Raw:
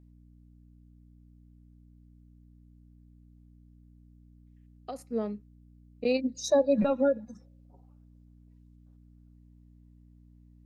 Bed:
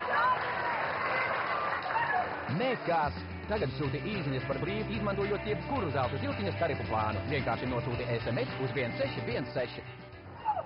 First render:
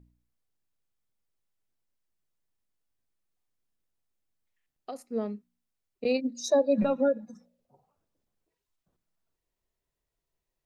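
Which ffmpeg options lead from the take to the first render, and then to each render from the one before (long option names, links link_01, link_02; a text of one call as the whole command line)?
ffmpeg -i in.wav -af "bandreject=frequency=60:width_type=h:width=4,bandreject=frequency=120:width_type=h:width=4,bandreject=frequency=180:width_type=h:width=4,bandreject=frequency=240:width_type=h:width=4,bandreject=frequency=300:width_type=h:width=4" out.wav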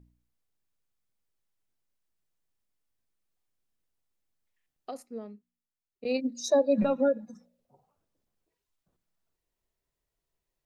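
ffmpeg -i in.wav -filter_complex "[0:a]asplit=3[link_01][link_02][link_03];[link_01]atrim=end=5.19,asetpts=PTS-STARTPTS,afade=type=out:start_time=5:duration=0.19:silence=0.316228[link_04];[link_02]atrim=start=5.19:end=6,asetpts=PTS-STARTPTS,volume=-10dB[link_05];[link_03]atrim=start=6,asetpts=PTS-STARTPTS,afade=type=in:duration=0.19:silence=0.316228[link_06];[link_04][link_05][link_06]concat=n=3:v=0:a=1" out.wav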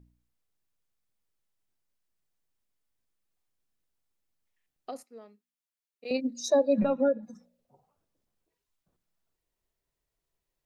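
ffmpeg -i in.wav -filter_complex "[0:a]asettb=1/sr,asplit=3[link_01][link_02][link_03];[link_01]atrim=end=5.034[link_04];[link_02]atrim=start=5.03:end=6.11,asetpts=PTS-STARTPTS,afade=type=in:duration=0.004:curve=qsin,afade=type=out:start_time=1.076:duration=0.004:curve=qsin,highpass=frequency=1000:poles=1[link_05];[link_03]atrim=start=6.106[link_06];[link_04][link_05]acrossfade=duration=0.004:curve1=hsin:curve2=qsin[link_07];[link_07][link_06]acrossfade=duration=0.004:curve1=qsin:curve2=hsin,asettb=1/sr,asplit=3[link_08][link_09][link_10];[link_08]atrim=end=6.794[link_11];[link_09]atrim=start=6.79:end=7.23,asetpts=PTS-STARTPTS,afade=type=in:duration=0.004:curve=qsin,afade=type=out:start_time=0.436:duration=0.004:curve=qsin,highshelf=frequency=3900:gain=-9[link_12];[link_10]atrim=start=7.226[link_13];[link_11][link_12]acrossfade=duration=0.004:curve1=hsin:curve2=qsin[link_14];[link_14][link_13]acrossfade=duration=0.004:curve1=qsin:curve2=hsin" out.wav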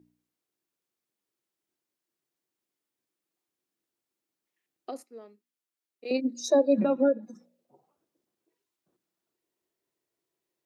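ffmpeg -i in.wav -af "highpass=180,equalizer=frequency=340:width=2.9:gain=10.5" out.wav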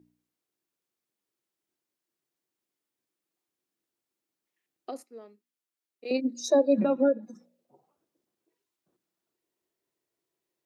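ffmpeg -i in.wav -af anull out.wav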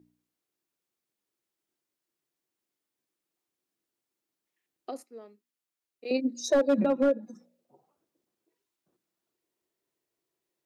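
ffmpeg -i in.wav -af "volume=17.5dB,asoftclip=hard,volume=-17.5dB" out.wav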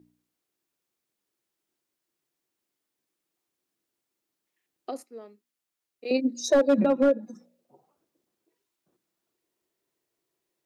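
ffmpeg -i in.wav -af "volume=3dB" out.wav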